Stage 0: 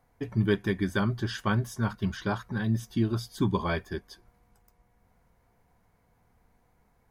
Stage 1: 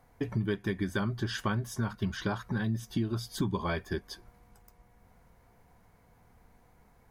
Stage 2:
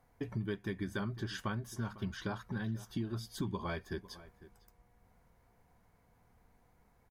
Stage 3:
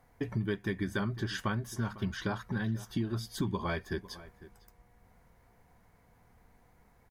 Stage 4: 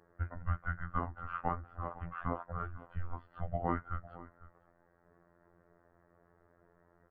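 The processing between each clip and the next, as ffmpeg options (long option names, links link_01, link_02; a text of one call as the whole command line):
ffmpeg -i in.wav -af "acompressor=threshold=-34dB:ratio=4,volume=5dB" out.wav
ffmpeg -i in.wav -filter_complex "[0:a]asplit=2[link_01][link_02];[link_02]adelay=501.5,volume=-17dB,highshelf=frequency=4000:gain=-11.3[link_03];[link_01][link_03]amix=inputs=2:normalize=0,volume=-6.5dB" out.wav
ffmpeg -i in.wav -af "equalizer=frequency=1900:width_type=o:width=0.36:gain=3,volume=4.5dB" out.wav
ffmpeg -i in.wav -af "highpass=frequency=270:width_type=q:width=0.5412,highpass=frequency=270:width_type=q:width=1.307,lowpass=frequency=2100:width_type=q:width=0.5176,lowpass=frequency=2100:width_type=q:width=0.7071,lowpass=frequency=2100:width_type=q:width=1.932,afreqshift=-340,afftfilt=real='hypot(re,im)*cos(PI*b)':imag='0':win_size=2048:overlap=0.75,volume=5dB" out.wav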